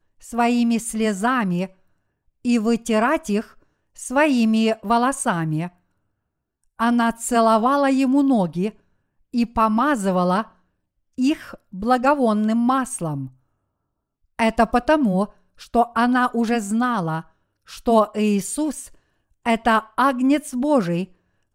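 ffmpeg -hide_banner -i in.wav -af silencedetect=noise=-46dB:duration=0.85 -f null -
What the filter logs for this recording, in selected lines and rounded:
silence_start: 5.69
silence_end: 6.79 | silence_duration: 1.10
silence_start: 13.32
silence_end: 14.39 | silence_duration: 1.07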